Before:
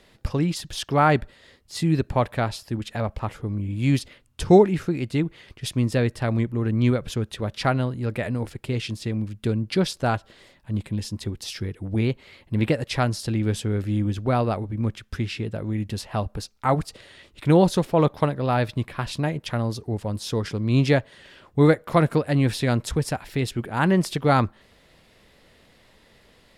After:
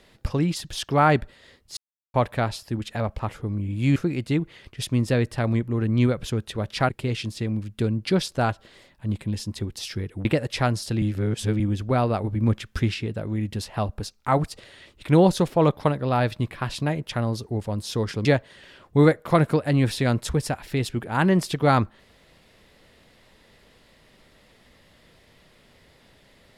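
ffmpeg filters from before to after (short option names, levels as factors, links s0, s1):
-filter_complex "[0:a]asplit=11[s0][s1][s2][s3][s4][s5][s6][s7][s8][s9][s10];[s0]atrim=end=1.77,asetpts=PTS-STARTPTS,afade=t=out:st=1.766:d=0.004:c=hsin[s11];[s1]atrim=start=1.77:end=2.14,asetpts=PTS-STARTPTS,volume=0[s12];[s2]atrim=start=2.14:end=3.962,asetpts=PTS-STARTPTS,afade=t=in:d=0.004:c=hsin[s13];[s3]atrim=start=4.798:end=7.732[s14];[s4]atrim=start=8.538:end=11.902[s15];[s5]atrim=start=12.618:end=13.392[s16];[s6]atrim=start=13.388:end=13.972,asetpts=PTS-STARTPTS,areverse[s17];[s7]atrim=start=13.968:end=14.612[s18];[s8]atrim=start=14.608:end=15.312,asetpts=PTS-STARTPTS,volume=1.58[s19];[s9]atrim=start=15.308:end=20.622[s20];[s10]atrim=start=20.868[s21];[s11][s12][s13]concat=n=3:v=0:a=1[s22];[s22][s14]acrossfade=d=0.004:c1=hsin:c2=hsin[s23];[s23][s15]acrossfade=d=0.004:c1=hsin:c2=hsin[s24];[s24][s16]acrossfade=d=0.004:c1=hsin:c2=hsin[s25];[s25][s17]acrossfade=d=0.004:c1=hsin:c2=hsin[s26];[s26][s18]acrossfade=d=0.004:c1=hsin:c2=hsin[s27];[s27][s19]acrossfade=d=0.004:c1=hsin:c2=hsin[s28];[s28][s20]acrossfade=d=0.004:c1=hsin:c2=hsin[s29];[s29][s21]acrossfade=d=0.004:c1=hsin:c2=hsin"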